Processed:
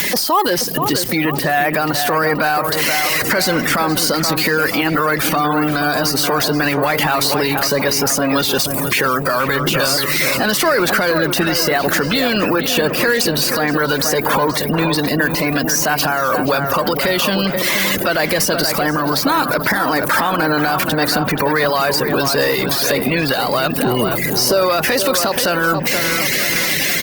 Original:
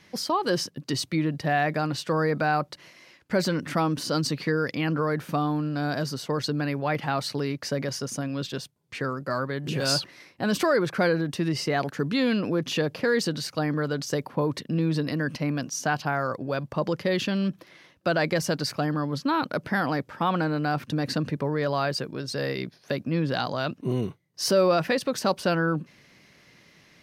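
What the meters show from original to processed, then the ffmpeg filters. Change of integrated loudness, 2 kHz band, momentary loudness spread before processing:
+11.5 dB, +14.5 dB, 7 LU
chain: -filter_complex "[0:a]aeval=exprs='val(0)+0.5*0.0299*sgn(val(0))':c=same,highpass=f=100:p=1,aemphasis=mode=production:type=75fm,afftfilt=real='re*gte(hypot(re,im),0.0251)':imag='im*gte(hypot(re,im),0.0251)':win_size=1024:overlap=0.75,acompressor=threshold=0.0562:ratio=3,crystalizer=i=1:c=0,acrossover=split=1000|7100[s0][s1][s2];[s0]acompressor=threshold=0.0178:ratio=4[s3];[s1]acompressor=threshold=0.0178:ratio=4[s4];[s2]acompressor=threshold=0.0355:ratio=4[s5];[s3][s4][s5]amix=inputs=3:normalize=0,asplit=2[s6][s7];[s7]highpass=f=720:p=1,volume=3.98,asoftclip=type=tanh:threshold=0.422[s8];[s6][s8]amix=inputs=2:normalize=0,lowpass=f=1600:p=1,volume=0.501,asplit=2[s9][s10];[s10]adelay=478,lowpass=f=2100:p=1,volume=0.398,asplit=2[s11][s12];[s12]adelay=478,lowpass=f=2100:p=1,volume=0.5,asplit=2[s13][s14];[s14]adelay=478,lowpass=f=2100:p=1,volume=0.5,asplit=2[s15][s16];[s16]adelay=478,lowpass=f=2100:p=1,volume=0.5,asplit=2[s17][s18];[s18]adelay=478,lowpass=f=2100:p=1,volume=0.5,asplit=2[s19][s20];[s20]adelay=478,lowpass=f=2100:p=1,volume=0.5[s21];[s11][s13][s15][s17][s19][s21]amix=inputs=6:normalize=0[s22];[s9][s22]amix=inputs=2:normalize=0,alimiter=level_in=16.8:limit=0.891:release=50:level=0:latency=1,volume=0.531" -ar 48000 -c:a libopus -b:a 24k

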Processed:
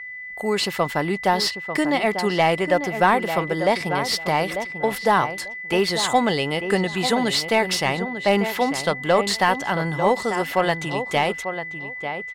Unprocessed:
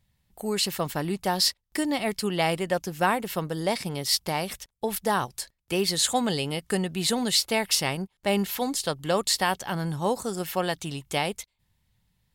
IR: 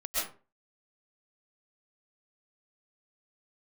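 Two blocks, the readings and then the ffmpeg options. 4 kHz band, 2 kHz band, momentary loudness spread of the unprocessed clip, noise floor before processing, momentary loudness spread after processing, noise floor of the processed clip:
+1.5 dB, +9.0 dB, 8 LU, -76 dBFS, 6 LU, -34 dBFS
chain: -filter_complex "[0:a]aeval=exprs='val(0)+0.01*sin(2*PI*2000*n/s)':c=same,asplit=2[s0][s1];[s1]adelay=894,lowpass=f=1700:p=1,volume=0.355,asplit=2[s2][s3];[s3]adelay=894,lowpass=f=1700:p=1,volume=0.19,asplit=2[s4][s5];[s5]adelay=894,lowpass=f=1700:p=1,volume=0.19[s6];[s0][s2][s4][s6]amix=inputs=4:normalize=0,asplit=2[s7][s8];[s8]highpass=f=720:p=1,volume=3.16,asoftclip=type=tanh:threshold=0.335[s9];[s7][s9]amix=inputs=2:normalize=0,lowpass=f=1500:p=1,volume=0.501,volume=2"

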